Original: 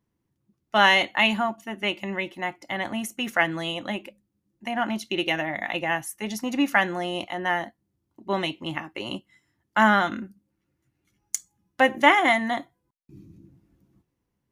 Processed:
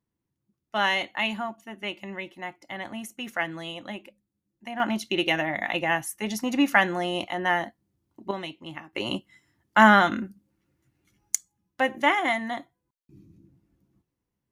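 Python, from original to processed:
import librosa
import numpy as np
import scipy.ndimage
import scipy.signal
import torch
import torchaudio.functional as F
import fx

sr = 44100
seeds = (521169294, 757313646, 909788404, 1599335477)

y = fx.gain(x, sr, db=fx.steps((0.0, -6.5), (4.8, 1.0), (8.31, -8.0), (8.93, 3.0), (11.35, -5.0)))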